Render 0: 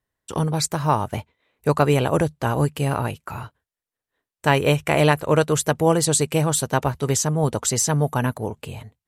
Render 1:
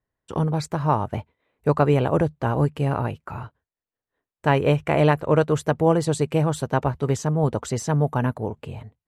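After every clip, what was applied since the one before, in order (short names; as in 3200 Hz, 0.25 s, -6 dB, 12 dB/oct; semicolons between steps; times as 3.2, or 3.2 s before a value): LPF 1400 Hz 6 dB/oct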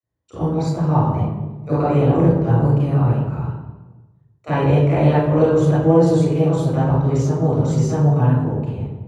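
reverb RT60 1.2 s, pre-delay 29 ms, DRR -9 dB; gain -17 dB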